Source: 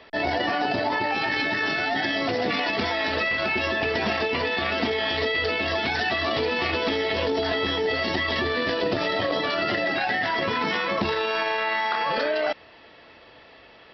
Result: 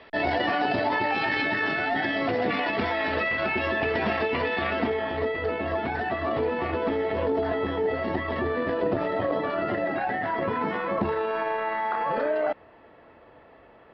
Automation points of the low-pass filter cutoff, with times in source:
0:01.30 3,400 Hz
0:01.80 2,400 Hz
0:04.65 2,400 Hz
0:05.06 1,300 Hz

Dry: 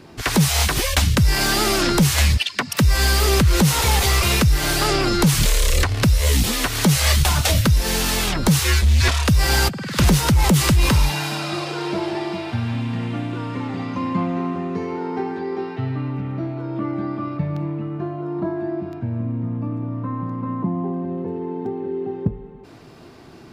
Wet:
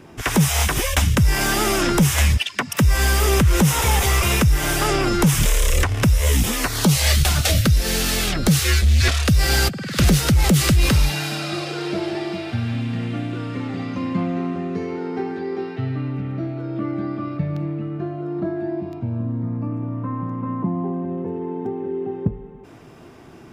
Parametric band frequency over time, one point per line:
parametric band −12 dB 0.29 octaves
0:06.56 4,300 Hz
0:07.14 960 Hz
0:18.55 960 Hz
0:19.83 4,300 Hz

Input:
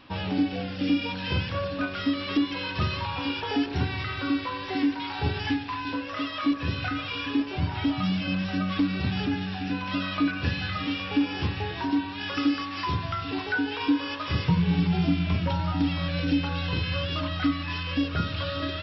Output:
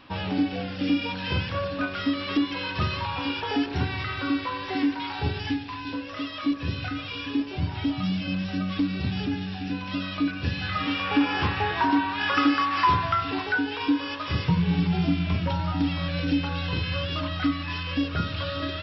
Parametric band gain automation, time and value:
parametric band 1,200 Hz 2.1 octaves
0:05.05 +2 dB
0:05.47 −4.5 dB
0:10.50 −4.5 dB
0:10.74 +4.5 dB
0:11.25 +11.5 dB
0:12.93 +11.5 dB
0:13.69 +0.5 dB

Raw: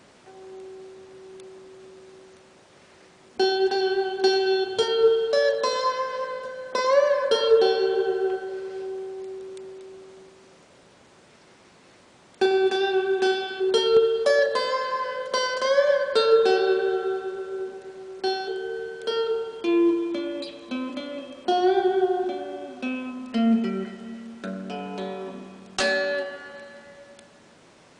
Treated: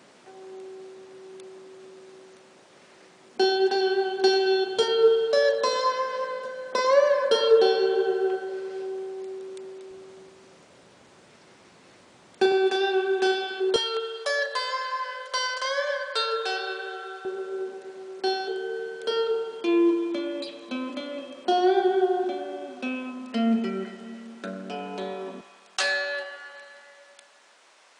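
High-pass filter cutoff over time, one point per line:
170 Hz
from 0:09.91 69 Hz
from 0:12.52 290 Hz
from 0:13.76 940 Hz
from 0:17.25 220 Hz
from 0:25.41 800 Hz

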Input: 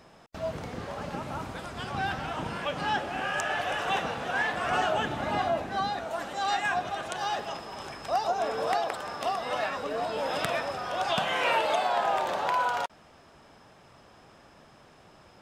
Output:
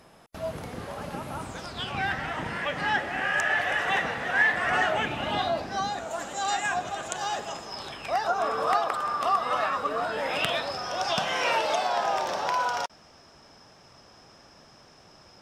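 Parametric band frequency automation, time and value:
parametric band +14 dB 0.35 octaves
0:01.35 11,000 Hz
0:02.06 1,900 Hz
0:04.91 1,900 Hz
0:05.94 7,100 Hz
0:07.60 7,100 Hz
0:08.38 1,200 Hz
0:09.97 1,200 Hz
0:10.80 5,500 Hz

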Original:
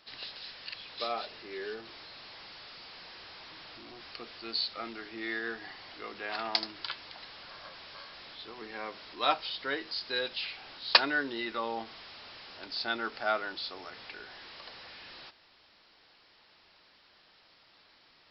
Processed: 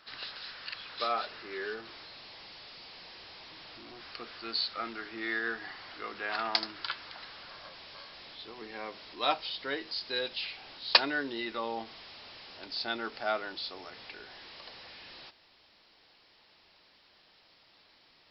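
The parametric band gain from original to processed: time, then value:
parametric band 1,400 Hz 0.79 octaves
0:01.63 +7.5 dB
0:02.25 −4 dB
0:03.53 −4 dB
0:04.32 +5 dB
0:07.18 +5 dB
0:07.73 −3.5 dB

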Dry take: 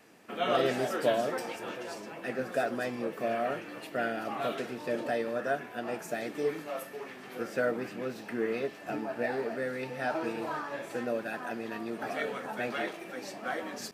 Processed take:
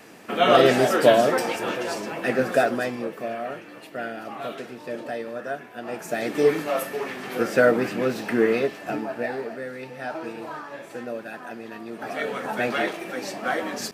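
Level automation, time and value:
0:02.50 +11.5 dB
0:03.35 0 dB
0:05.74 0 dB
0:06.41 +12 dB
0:08.39 +12 dB
0:09.63 0 dB
0:11.85 0 dB
0:12.50 +9 dB

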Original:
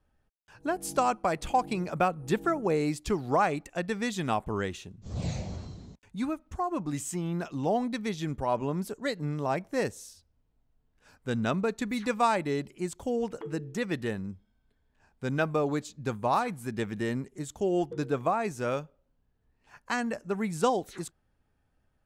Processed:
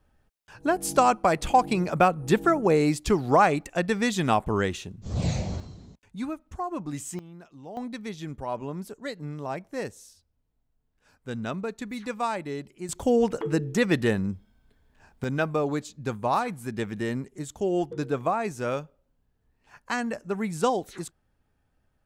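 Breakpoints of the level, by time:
+6 dB
from 0:05.60 −1 dB
from 0:07.19 −14 dB
from 0:07.77 −3.5 dB
from 0:12.89 +8.5 dB
from 0:15.24 +1.5 dB

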